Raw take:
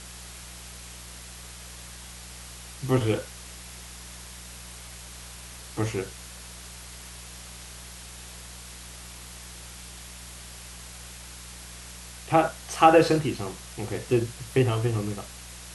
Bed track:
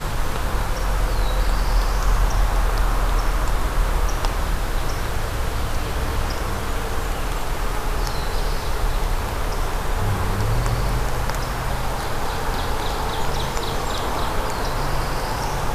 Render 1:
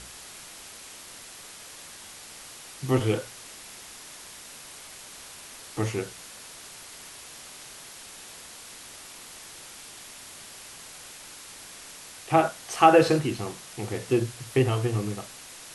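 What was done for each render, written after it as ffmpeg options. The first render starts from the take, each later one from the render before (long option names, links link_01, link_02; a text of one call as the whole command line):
ffmpeg -i in.wav -af "bandreject=frequency=60:width_type=h:width=4,bandreject=frequency=120:width_type=h:width=4,bandreject=frequency=180:width_type=h:width=4" out.wav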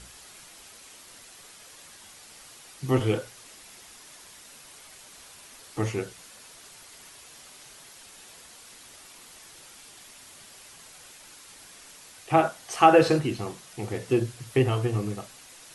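ffmpeg -i in.wav -af "afftdn=noise_reduction=6:noise_floor=-45" out.wav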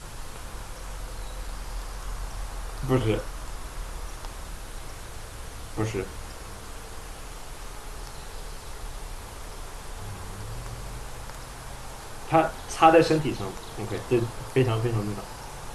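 ffmpeg -i in.wav -i bed.wav -filter_complex "[1:a]volume=-16dB[link_01];[0:a][link_01]amix=inputs=2:normalize=0" out.wav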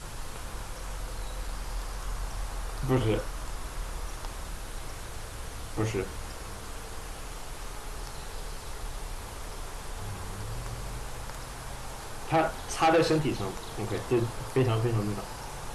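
ffmpeg -i in.wav -af "asoftclip=type=tanh:threshold=-18dB" out.wav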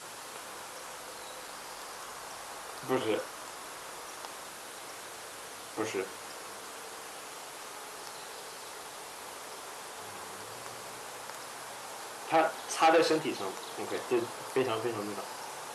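ffmpeg -i in.wav -af "highpass=360" out.wav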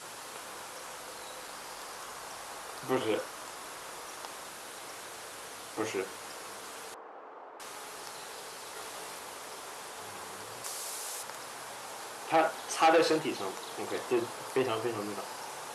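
ffmpeg -i in.wav -filter_complex "[0:a]asettb=1/sr,asplit=3[link_01][link_02][link_03];[link_01]atrim=end=6.944[link_04];[link_02]atrim=start=6.94:end=7.6,asetpts=PTS-STARTPTS,afade=type=in:duration=0.004:curve=qsin,afade=type=out:start_time=0.656:duration=0.004:curve=qsin,asuperpass=centerf=590:order=4:qfactor=0.62[link_05];[link_03]atrim=start=7.596[link_06];[link_04][link_05]acrossfade=duration=0.004:curve1=hsin:curve2=qsin[link_07];[link_07][link_06]acrossfade=duration=0.004:curve1=qsin:curve2=hsin,asettb=1/sr,asplit=3[link_08][link_09][link_10];[link_08]atrim=end=8.744[link_11];[link_09]atrim=start=8.74:end=9.19,asetpts=PTS-STARTPTS,afade=type=in:duration=0.004:curve=qsin,afade=type=out:start_time=0.446:duration=0.004:curve=qsin,asplit=2[link_12][link_13];[link_13]adelay=18,volume=-2.5dB[link_14];[link_12][link_14]amix=inputs=2:normalize=0,atrim=end_sample=19845[link_15];[link_10]atrim=start=9.186[link_16];[link_11][link_15]acrossfade=duration=0.004:curve1=hsin:curve2=qsin[link_17];[link_17][link_16]acrossfade=duration=0.004:curve1=qsin:curve2=hsin,asettb=1/sr,asplit=3[link_18][link_19][link_20];[link_18]atrim=end=10.644[link_21];[link_19]atrim=start=10.64:end=11.23,asetpts=PTS-STARTPTS,afade=type=in:duration=0.004:curve=qsin,afade=type=out:start_time=0.586:duration=0.004:curve=qsin,bass=frequency=250:gain=-11,treble=frequency=4000:gain=10[link_22];[link_20]atrim=start=11.226[link_23];[link_21][link_22]acrossfade=duration=0.004:curve1=hsin:curve2=qsin[link_24];[link_24][link_23]acrossfade=duration=0.004:curve1=qsin:curve2=hsin" out.wav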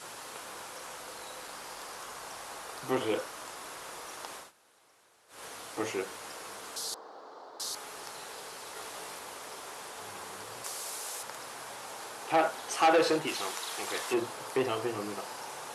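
ffmpeg -i in.wav -filter_complex "[0:a]asettb=1/sr,asplit=3[link_01][link_02][link_03];[link_01]atrim=end=6.764[link_04];[link_02]atrim=start=6.76:end=7.75,asetpts=PTS-STARTPTS,afade=type=in:duration=0.004:curve=qsin,afade=type=out:start_time=0.986:duration=0.004:curve=qsin,highshelf=frequency=3300:width_type=q:width=3:gain=9.5[link_05];[link_03]atrim=start=7.746[link_06];[link_04][link_05]acrossfade=duration=0.004:curve1=hsin:curve2=qsin[link_07];[link_07][link_06]acrossfade=duration=0.004:curve1=qsin:curve2=hsin,asettb=1/sr,asplit=3[link_08][link_09][link_10];[link_08]atrim=end=13.274[link_11];[link_09]atrim=start=13.27:end=14.14,asetpts=PTS-STARTPTS,afade=type=in:duration=0.004:curve=qsin,afade=type=out:start_time=0.866:duration=0.004:curve=qsin,tiltshelf=frequency=760:gain=-7[link_12];[link_10]atrim=start=14.136[link_13];[link_11][link_12]acrossfade=duration=0.004:curve1=hsin:curve2=qsin[link_14];[link_14][link_13]acrossfade=duration=0.004:curve1=qsin:curve2=hsin,asplit=3[link_15][link_16][link_17];[link_15]atrim=end=4.52,asetpts=PTS-STARTPTS,afade=type=out:start_time=4.36:duration=0.16:silence=0.1[link_18];[link_16]atrim=start=4.52:end=5.28,asetpts=PTS-STARTPTS,volume=-20dB[link_19];[link_17]atrim=start=5.28,asetpts=PTS-STARTPTS,afade=type=in:duration=0.16:silence=0.1[link_20];[link_18][link_19][link_20]concat=n=3:v=0:a=1" out.wav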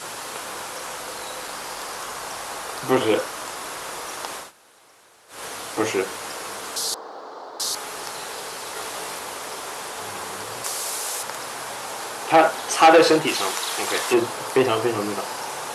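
ffmpeg -i in.wav -af "volume=11dB" out.wav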